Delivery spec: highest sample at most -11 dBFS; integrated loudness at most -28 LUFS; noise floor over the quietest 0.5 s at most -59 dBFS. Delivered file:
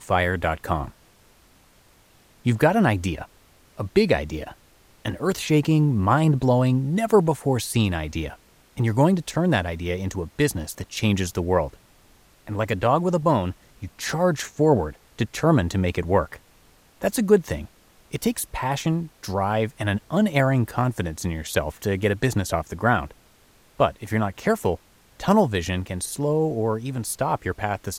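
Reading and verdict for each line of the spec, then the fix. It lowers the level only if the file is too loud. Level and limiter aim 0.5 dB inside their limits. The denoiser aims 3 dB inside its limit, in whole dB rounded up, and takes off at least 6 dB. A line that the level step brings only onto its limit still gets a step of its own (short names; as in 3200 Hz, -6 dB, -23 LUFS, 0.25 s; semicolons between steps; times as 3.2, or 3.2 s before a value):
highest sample -5.0 dBFS: fail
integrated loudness -23.5 LUFS: fail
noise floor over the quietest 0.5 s -56 dBFS: fail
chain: gain -5 dB; limiter -11.5 dBFS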